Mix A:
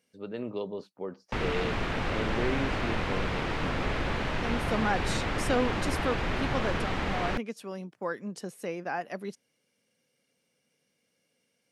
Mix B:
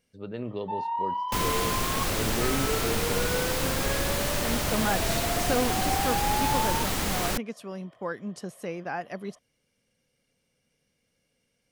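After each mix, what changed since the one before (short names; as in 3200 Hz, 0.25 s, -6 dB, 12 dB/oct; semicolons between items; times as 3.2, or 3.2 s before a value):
speech: remove HPF 180 Hz 12 dB/oct; first sound: unmuted; second sound: remove Chebyshev low-pass 2300 Hz, order 2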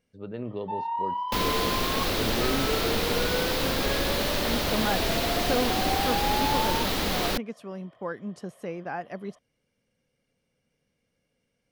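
speech: add high shelf 3000 Hz -8.5 dB; second sound: add graphic EQ 125/250/500/4000/8000 Hz -4/+3/+4/+7/-8 dB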